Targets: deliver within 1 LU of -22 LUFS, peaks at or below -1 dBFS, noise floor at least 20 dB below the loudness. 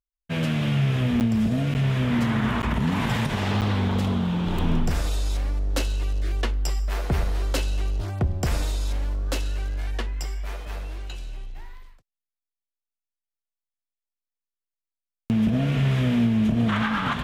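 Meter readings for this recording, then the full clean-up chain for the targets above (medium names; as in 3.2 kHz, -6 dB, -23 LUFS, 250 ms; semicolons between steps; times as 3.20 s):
dropouts 4; longest dropout 9.0 ms; loudness -25.0 LUFS; peak level -12.0 dBFS; loudness target -22.0 LUFS
-> interpolate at 1.20/1.74/2.62/3.61 s, 9 ms; trim +3 dB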